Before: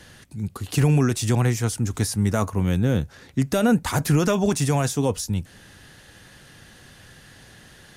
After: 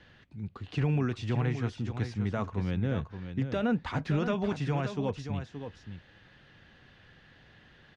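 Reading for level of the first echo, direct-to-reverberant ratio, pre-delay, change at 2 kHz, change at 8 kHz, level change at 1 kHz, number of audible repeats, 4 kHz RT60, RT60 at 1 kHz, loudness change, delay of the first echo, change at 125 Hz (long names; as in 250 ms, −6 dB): −9.0 dB, no reverb audible, no reverb audible, −8.0 dB, below −25 dB, −8.5 dB, 1, no reverb audible, no reverb audible, −9.5 dB, 574 ms, −9.0 dB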